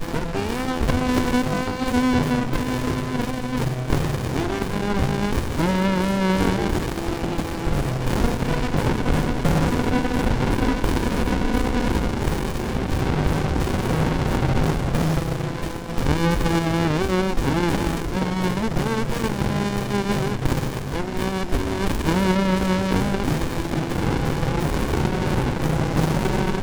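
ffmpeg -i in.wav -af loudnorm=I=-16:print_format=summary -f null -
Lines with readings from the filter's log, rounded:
Input Integrated:    -22.9 LUFS
Input True Peak:      -5.6 dBTP
Input LRA:             1.5 LU
Input Threshold:     -32.9 LUFS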